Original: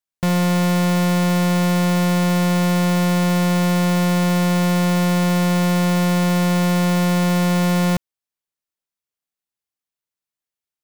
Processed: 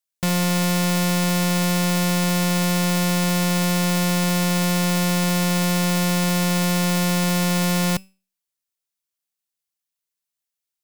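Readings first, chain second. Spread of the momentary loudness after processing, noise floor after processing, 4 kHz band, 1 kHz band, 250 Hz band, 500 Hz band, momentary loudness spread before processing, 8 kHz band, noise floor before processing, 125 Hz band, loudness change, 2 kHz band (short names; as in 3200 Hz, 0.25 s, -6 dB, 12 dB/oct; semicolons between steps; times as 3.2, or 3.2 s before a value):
0 LU, -85 dBFS, +2.5 dB, -3.0 dB, -3.5 dB, -3.5 dB, 0 LU, +4.5 dB, under -85 dBFS, -3.5 dB, -2.5 dB, -0.5 dB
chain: high shelf 2600 Hz +9.5 dB; resonator 190 Hz, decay 0.34 s, harmonics all, mix 40%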